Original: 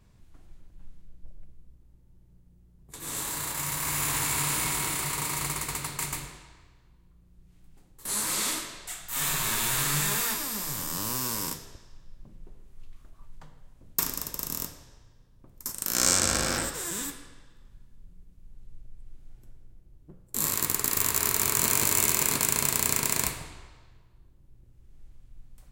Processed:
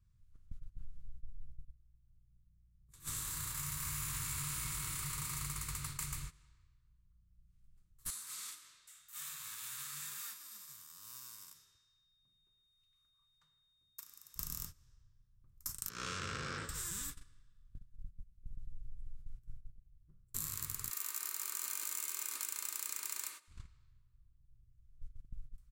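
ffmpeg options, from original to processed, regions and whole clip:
ffmpeg -i in.wav -filter_complex "[0:a]asettb=1/sr,asplit=3[link_01][link_02][link_03];[link_01]atrim=end=8.104[link_04];[link_02]atrim=start=8.1:end=14.36,asetpts=PTS-STARTPTS,afade=type=in:duration=0.004:curve=qsin,afade=type=out:start_time=6.256:duration=0.004:curve=qsin,highpass=frequency=810:poles=1,acompressor=threshold=-35dB:ratio=4:attack=3.2:release=140:knee=1:detection=peak,aeval=exprs='val(0)+0.002*sin(2*PI*3700*n/s)':channel_layout=same[link_05];[link_03]atrim=start=14.356[link_06];[link_04][link_05]acrossfade=duration=0.004:curve1=hsin:curve2=qsin[link_07];[link_07][link_06]acrossfade=duration=0.004:curve1=qsin:curve2=hsin,asettb=1/sr,asplit=3[link_08][link_09][link_10];[link_08]atrim=end=15.894[link_11];[link_09]atrim=start=15.89:end=16.69,asetpts=PTS-STARTPTS,afade=type=in:duration=0.004:curve=qsin,afade=type=out:start_time=0.796:duration=0.004:curve=qsin,equalizer=frequency=440:width=4.2:gain=12.5,aeval=exprs='0.2*(abs(mod(val(0)/0.2+3,4)-2)-1)':channel_layout=same,highpass=150,lowpass=3300[link_12];[link_10]atrim=start=16.686[link_13];[link_11][link_12]acrossfade=duration=0.004:curve1=hsin:curve2=qsin[link_14];[link_14][link_13]acrossfade=duration=0.004:curve1=qsin:curve2=hsin,asettb=1/sr,asplit=3[link_15][link_16][link_17];[link_15]atrim=end=20.904[link_18];[link_16]atrim=start=20.9:end=23.48,asetpts=PTS-STARTPTS,afade=type=in:duration=0.004:curve=qsin,afade=type=out:start_time=2.576:duration=0.004:curve=qsin,highpass=frequency=360:width=0.5412,highpass=frequency=360:width=1.3066,aecho=1:1:3.3:0.46,atrim=end_sample=113778[link_19];[link_17]atrim=start=23.476[link_20];[link_18][link_19]acrossfade=duration=0.004:curve1=hsin:curve2=qsin[link_21];[link_21][link_20]acrossfade=duration=0.004:curve1=qsin:curve2=hsin,firequalizer=gain_entry='entry(100,0);entry(240,-17);entry(740,-25);entry(1200,-8);entry(1800,-12);entry(5600,-8)':delay=0.05:min_phase=1,agate=range=-18dB:threshold=-44dB:ratio=16:detection=peak,acompressor=threshold=-48dB:ratio=4,volume=8.5dB" out.wav

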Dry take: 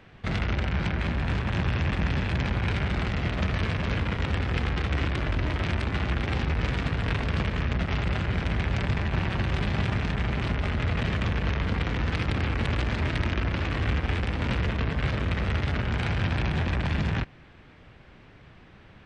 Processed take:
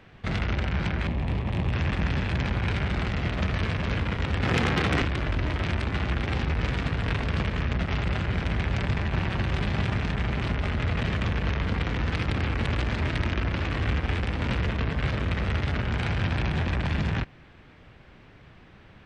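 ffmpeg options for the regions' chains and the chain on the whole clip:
ffmpeg -i in.wav -filter_complex "[0:a]asettb=1/sr,asplit=3[link_01][link_02][link_03];[link_01]atrim=end=1.074[link_04];[link_02]atrim=start=1.07:end=1.73,asetpts=PTS-STARTPTS,afade=type=in:duration=0.004:curve=qsin,afade=type=out:start_time=0.656:duration=0.004:curve=qsin,equalizer=frequency=1500:width_type=o:width=0.49:gain=-11.5,adynamicsmooth=sensitivity=2:basefreq=3000[link_05];[link_03]atrim=start=1.726[link_06];[link_04][link_05]acrossfade=duration=0.004:curve1=hsin:curve2=qsin[link_07];[link_07][link_06]acrossfade=duration=0.004:curve1=qsin:curve2=hsin,asettb=1/sr,asplit=3[link_08][link_09][link_10];[link_08]atrim=end=4.434[link_11];[link_09]atrim=start=4.43:end=5.02,asetpts=PTS-STARTPTS,afade=type=in:duration=0.004:curve=qsin,afade=type=out:start_time=0.586:duration=0.004:curve=qsin,highpass=120,aeval=exprs='0.168*sin(PI/2*1.58*val(0)/0.168)':channel_layout=same[link_12];[link_10]atrim=start=5.016[link_13];[link_11][link_12]acrossfade=duration=0.004:curve1=hsin:curve2=qsin[link_14];[link_14][link_13]acrossfade=duration=0.004:curve1=qsin:curve2=hsin" out.wav

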